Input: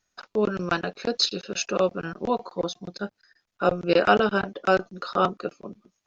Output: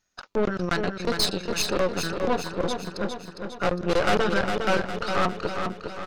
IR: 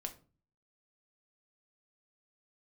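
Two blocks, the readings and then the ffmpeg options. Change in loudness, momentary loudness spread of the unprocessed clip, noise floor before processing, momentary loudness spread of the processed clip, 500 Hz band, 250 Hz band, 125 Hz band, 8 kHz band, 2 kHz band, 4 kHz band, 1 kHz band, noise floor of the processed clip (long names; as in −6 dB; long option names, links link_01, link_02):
−1.0 dB, 15 LU, −80 dBFS, 9 LU, −1.0 dB, 0.0 dB, +2.5 dB, can't be measured, +0.5 dB, 0.0 dB, −1.5 dB, −46 dBFS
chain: -af "tremolo=f=190:d=0.261,aeval=exprs='(tanh(17.8*val(0)+0.8)-tanh(0.8))/17.8':channel_layout=same,aecho=1:1:407|814|1221|1628|2035|2442:0.501|0.261|0.136|0.0705|0.0366|0.0191,volume=6.5dB"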